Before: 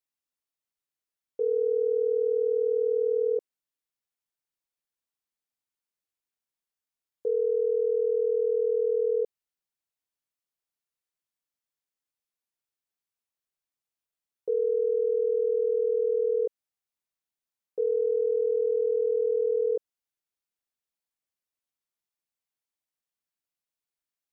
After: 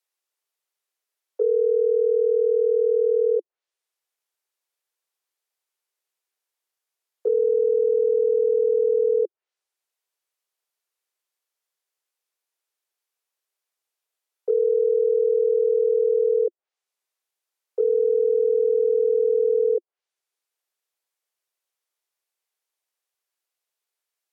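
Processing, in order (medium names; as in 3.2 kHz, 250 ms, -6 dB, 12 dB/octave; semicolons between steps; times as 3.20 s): low-pass that closes with the level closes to 570 Hz, closed at -27 dBFS; steep high-pass 350 Hz 96 dB/octave; trim +7 dB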